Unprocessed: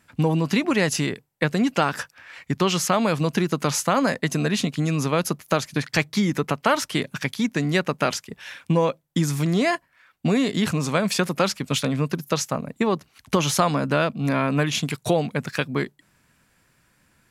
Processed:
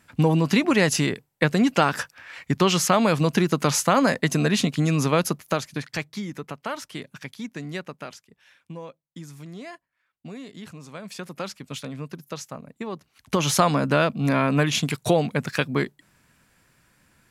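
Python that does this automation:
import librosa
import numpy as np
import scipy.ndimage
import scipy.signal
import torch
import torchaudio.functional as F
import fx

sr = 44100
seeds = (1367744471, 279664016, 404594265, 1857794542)

y = fx.gain(x, sr, db=fx.line((5.15, 1.5), (6.26, -11.0), (7.77, -11.0), (8.25, -18.0), (10.88, -18.0), (11.41, -11.0), (12.89, -11.0), (13.53, 1.0)))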